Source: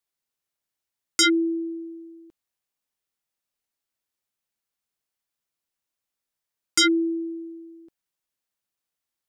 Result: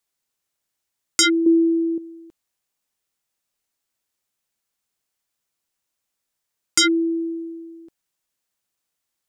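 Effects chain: 1.46–1.98 s: peaking EQ 340 Hz +11.5 dB 0.77 oct; in parallel at +2 dB: compression, threshold -26 dBFS, peak gain reduction 12 dB; on the sum: peaking EQ 7.4 kHz +3 dB 0.77 oct; trim -2 dB

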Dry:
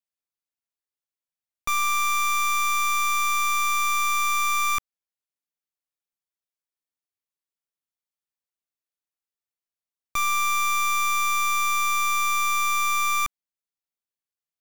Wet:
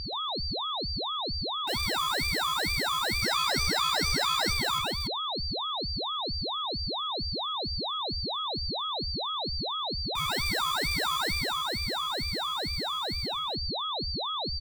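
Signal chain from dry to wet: fade out at the end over 3.40 s; gate -23 dBFS, range -20 dB; 3.22–4.53 s: peaking EQ 3.4 kHz +13.5 dB 1.1 oct; in parallel at +2.5 dB: peak limiter -30 dBFS, peak gain reduction 3 dB; on the sum: whistle 2.3 kHz -30 dBFS; loudspeakers at several distances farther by 44 m -5 dB, 99 m -7 dB; ring modulator with a swept carrier 1.7 kHz, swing 40%, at 2.2 Hz

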